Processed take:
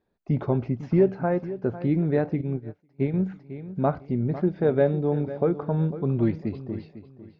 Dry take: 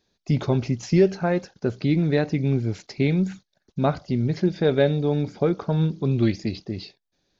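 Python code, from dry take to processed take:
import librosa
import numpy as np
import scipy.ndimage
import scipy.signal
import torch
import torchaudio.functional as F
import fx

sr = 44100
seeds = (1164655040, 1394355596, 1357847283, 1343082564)

p1 = scipy.signal.sosfilt(scipy.signal.butter(2, 1300.0, 'lowpass', fs=sr, output='sos'), x)
p2 = fx.low_shelf(p1, sr, hz=320.0, db=-3.5)
p3 = p2 + fx.echo_feedback(p2, sr, ms=501, feedback_pct=25, wet_db=-14, dry=0)
y = fx.upward_expand(p3, sr, threshold_db=-36.0, expansion=2.5, at=(2.41, 3.14))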